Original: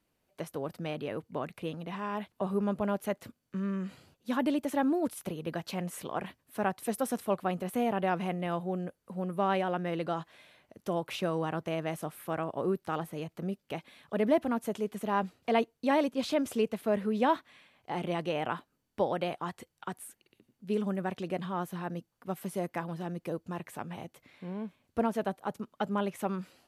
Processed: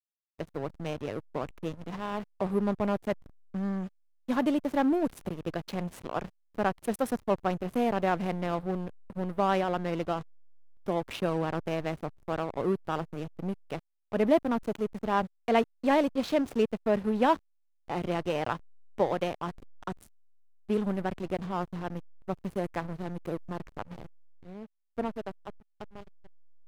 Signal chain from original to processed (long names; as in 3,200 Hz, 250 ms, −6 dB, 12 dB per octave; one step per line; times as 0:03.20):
fade-out on the ending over 3.01 s
slack as between gear wheels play −33.5 dBFS
level +3 dB